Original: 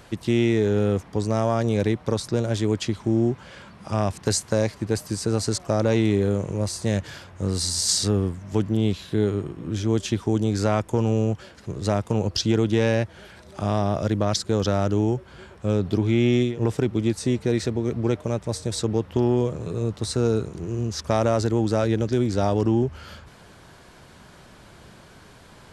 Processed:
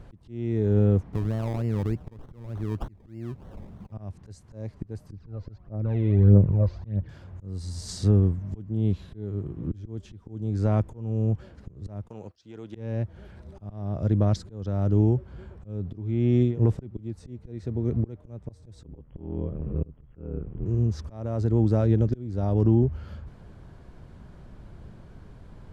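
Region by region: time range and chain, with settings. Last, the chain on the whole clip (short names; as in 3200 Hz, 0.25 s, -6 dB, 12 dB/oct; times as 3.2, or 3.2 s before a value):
1.13–3.92 compressor 2:1, threshold -27 dBFS + decimation with a swept rate 25×, swing 60% 3.3 Hz
5.12–7.09 median filter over 5 samples + phaser 1.6 Hz, delay 2.1 ms, feedback 59% + air absorption 210 m
12.08–12.75 HPF 1200 Hz 6 dB/oct + gate -46 dBFS, range -15 dB
18.83–20.66 ring modulator 39 Hz + brick-wall FIR low-pass 3400 Hz
whole clip: high shelf 7900 Hz +4.5 dB; auto swell 0.51 s; tilt -4 dB/oct; gain -8 dB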